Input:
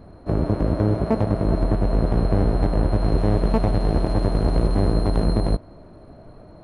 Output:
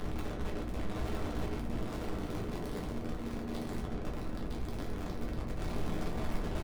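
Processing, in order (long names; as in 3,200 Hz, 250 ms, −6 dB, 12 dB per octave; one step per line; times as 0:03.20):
sign of each sample alone
0:01.73–0:02.84: high-pass filter 240 Hz 12 dB per octave
spectral tilt −2.5 dB per octave
soft clipping −35.5 dBFS, distortion −5 dB
amplitude modulation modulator 190 Hz, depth 75%
single-tap delay 960 ms −3 dB
rectangular room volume 44 cubic metres, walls mixed, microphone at 0.74 metres
level −3.5 dB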